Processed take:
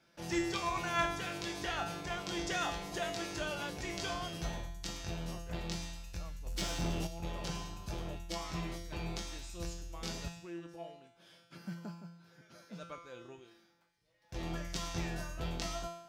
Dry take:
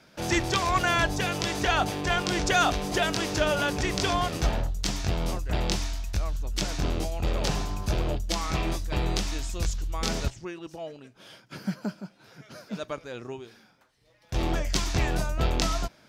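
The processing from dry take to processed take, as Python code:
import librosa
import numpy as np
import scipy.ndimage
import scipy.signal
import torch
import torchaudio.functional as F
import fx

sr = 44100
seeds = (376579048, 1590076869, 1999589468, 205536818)

y = fx.comb_fb(x, sr, f0_hz=170.0, decay_s=0.78, harmonics='all', damping=0.0, mix_pct=90)
y = fx.power_curve(y, sr, exponent=0.7, at=(6.46, 7.07))
y = y * librosa.db_to_amplitude(3.0)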